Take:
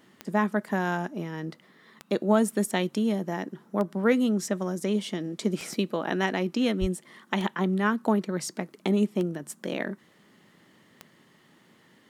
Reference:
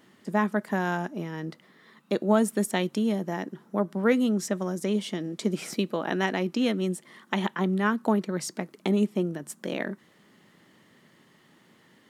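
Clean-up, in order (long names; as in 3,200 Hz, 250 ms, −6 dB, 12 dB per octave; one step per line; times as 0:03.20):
click removal
0:06.80–0:06.92: high-pass filter 140 Hz 24 dB per octave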